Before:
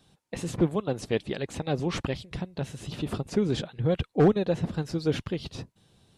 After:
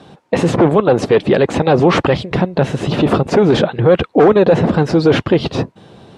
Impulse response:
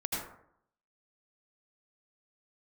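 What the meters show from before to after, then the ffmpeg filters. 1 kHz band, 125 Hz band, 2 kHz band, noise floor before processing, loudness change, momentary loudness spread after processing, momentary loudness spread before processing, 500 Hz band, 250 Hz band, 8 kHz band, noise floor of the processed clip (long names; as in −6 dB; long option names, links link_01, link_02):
+19.0 dB, +12.5 dB, +17.5 dB, −74 dBFS, +15.0 dB, 7 LU, 14 LU, +17.0 dB, +14.0 dB, can't be measured, −55 dBFS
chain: -af "apsyclip=30dB,bandpass=frequency=560:width_type=q:width=0.54:csg=0,volume=-3.5dB"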